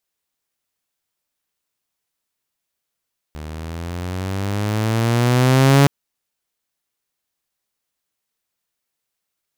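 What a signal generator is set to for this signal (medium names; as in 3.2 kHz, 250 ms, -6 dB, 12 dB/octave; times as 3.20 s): gliding synth tone saw, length 2.52 s, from 75.2 Hz, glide +11 st, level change +21.5 dB, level -6 dB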